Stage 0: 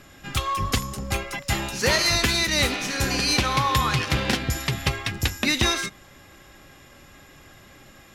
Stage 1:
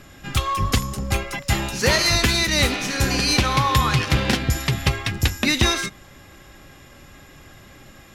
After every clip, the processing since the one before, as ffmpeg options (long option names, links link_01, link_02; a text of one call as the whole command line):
ffmpeg -i in.wav -af "lowshelf=frequency=220:gain=4,volume=2dB" out.wav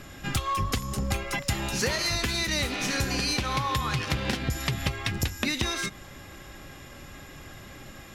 ffmpeg -i in.wav -af "acompressor=threshold=-25dB:ratio=10,volume=1dB" out.wav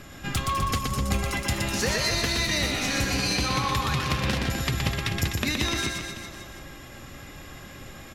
ffmpeg -i in.wav -af "aecho=1:1:120|252|397.2|556.9|732.6:0.631|0.398|0.251|0.158|0.1" out.wav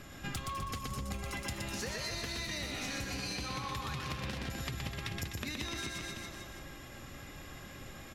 ffmpeg -i in.wav -af "acompressor=threshold=-30dB:ratio=6,volume=-5.5dB" out.wav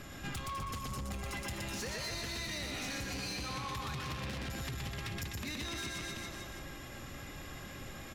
ffmpeg -i in.wav -af "asoftclip=type=tanh:threshold=-37dB,volume=2.5dB" out.wav